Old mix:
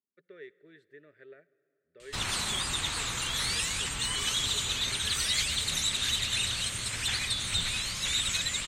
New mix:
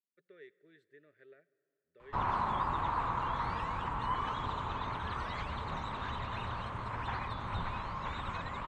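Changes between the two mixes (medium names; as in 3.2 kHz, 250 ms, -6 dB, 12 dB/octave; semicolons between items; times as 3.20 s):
speech -7.0 dB; background: add resonant low-pass 1 kHz, resonance Q 4.6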